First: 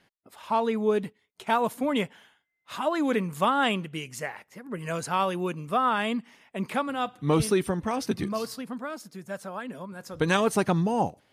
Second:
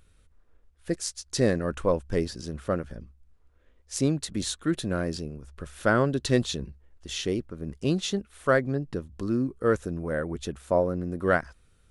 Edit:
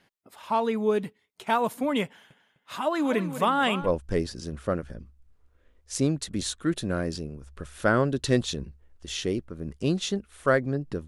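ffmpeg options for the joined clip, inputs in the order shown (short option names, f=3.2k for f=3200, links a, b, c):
-filter_complex "[0:a]asettb=1/sr,asplit=3[a][b][c];[a]atrim=end=2.054[d];[b]atrim=start=2.05:end=3.9,asetpts=PTS-STARTPTS,afade=t=in:d=0.004:c=qsin,afade=t=out:st=1.846:d=0.004:c=qsin,asplit=2[e][f];[f]adelay=254,lowpass=f=4.9k:p=1,volume=-11dB,asplit=2[g][h];[h]adelay=254,lowpass=f=4.9k:p=1,volume=0.27,asplit=2[i][j];[j]adelay=254,lowpass=f=4.9k:p=1,volume=0.27[k];[e][g][i][k]amix=inputs=4:normalize=0,atrim=end_sample=81585[l];[c]atrim=start=3.896[m];[d][l]acrossfade=d=0.004:c1=hsin:c2=qsin[n];[n][m]acrossfade=d=0.004:c1=qsin:c2=hsin,apad=whole_dur=11.07,atrim=end=11.07,atrim=end=3.9,asetpts=PTS-STARTPTS[o];[1:a]atrim=start=1.81:end=9.08,asetpts=PTS-STARTPTS[p];[o][p]acrossfade=d=0.1:c1=tri:c2=tri"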